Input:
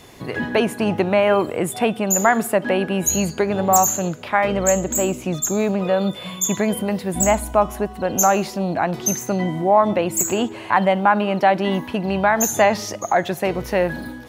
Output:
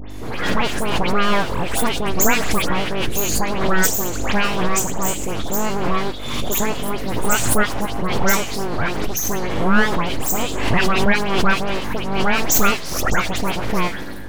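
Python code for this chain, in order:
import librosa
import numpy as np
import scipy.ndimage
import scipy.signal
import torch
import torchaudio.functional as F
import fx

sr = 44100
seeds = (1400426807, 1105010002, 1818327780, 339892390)

y = fx.add_hum(x, sr, base_hz=50, snr_db=11)
y = fx.peak_eq(y, sr, hz=110.0, db=-4.5, octaves=1.5)
y = np.abs(y)
y = fx.dispersion(y, sr, late='highs', ms=110.0, hz=2700.0)
y = fx.pre_swell(y, sr, db_per_s=45.0)
y = y * 10.0 ** (2.0 / 20.0)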